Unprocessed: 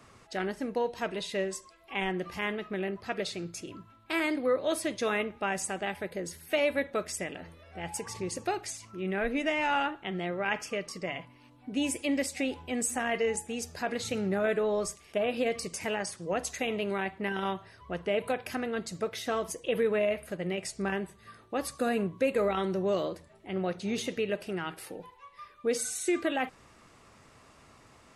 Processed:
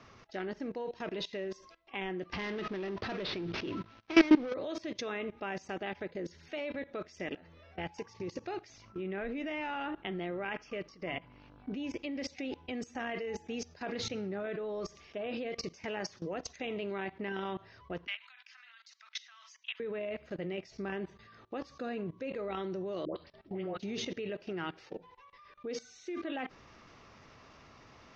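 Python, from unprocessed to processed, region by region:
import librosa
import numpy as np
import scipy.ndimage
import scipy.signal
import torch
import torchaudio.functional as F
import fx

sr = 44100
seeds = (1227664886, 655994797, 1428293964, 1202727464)

y = fx.chain(x, sr, fx.cvsd(bps=32000),
    fx.lowpass(hz=4200.0, slope=24),
    fx.leveller(passes=3), at=(2.33, 4.54))
y = fx.dmg_buzz(y, sr, base_hz=50.0, harmonics=34, level_db=-59.0, tilt_db=-4, odd_only=False, at=(8.68, 12.2), fade=0.02)
y = fx.air_absorb(y, sr, metres=67.0, at=(8.68, 12.2), fade=0.02)
y = fx.chain(y, sr, fx.bessel_highpass(hz=1900.0, order=8),
    fx.band_squash(depth_pct=40), at=(18.07, 19.8))
y = fx.chain(y, sr, fx.dispersion(late='highs', ms=109.0, hz=820.0),
    fx.resample_bad(factor=4, down='none', up='filtered'), at=(23.05, 23.78))
y = scipy.signal.sosfilt(scipy.signal.ellip(4, 1.0, 40, 6000.0, 'lowpass', fs=sr, output='sos'), y)
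y = fx.dynamic_eq(y, sr, hz=330.0, q=1.6, threshold_db=-46.0, ratio=4.0, max_db=5)
y = fx.level_steps(y, sr, step_db=20)
y = F.gain(torch.from_numpy(y), 3.0).numpy()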